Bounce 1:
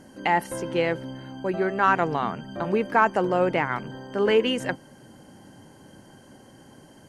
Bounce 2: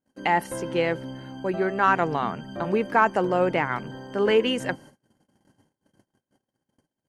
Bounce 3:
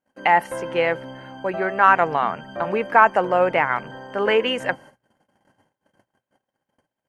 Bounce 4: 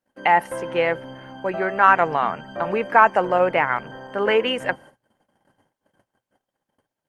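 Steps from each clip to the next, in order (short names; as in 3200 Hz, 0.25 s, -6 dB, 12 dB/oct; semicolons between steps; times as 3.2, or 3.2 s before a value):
gate -45 dBFS, range -38 dB
band shelf 1200 Hz +9 dB 2.8 oct; notches 60/120 Hz; gain -3 dB
Opus 32 kbps 48000 Hz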